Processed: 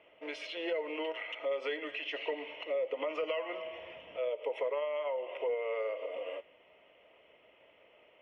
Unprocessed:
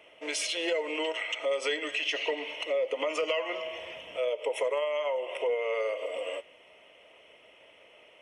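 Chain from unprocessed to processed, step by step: distance through air 330 m; trim -3.5 dB

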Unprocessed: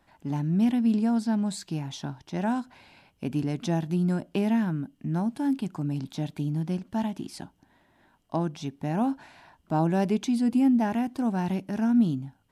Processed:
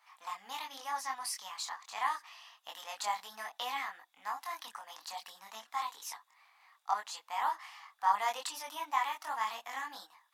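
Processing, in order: tape speed +21%; chorus voices 4, 0.74 Hz, delay 23 ms, depth 4.1 ms; inverse Chebyshev high-pass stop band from 400 Hz, stop band 40 dB; trim +4.5 dB

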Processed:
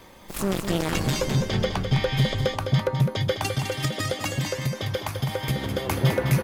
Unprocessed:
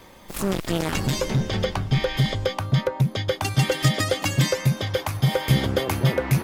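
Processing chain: 3.49–5.89 s: compression 4:1, threshold -23 dBFS, peak gain reduction 8.5 dB; delay 207 ms -7.5 dB; trim -1 dB

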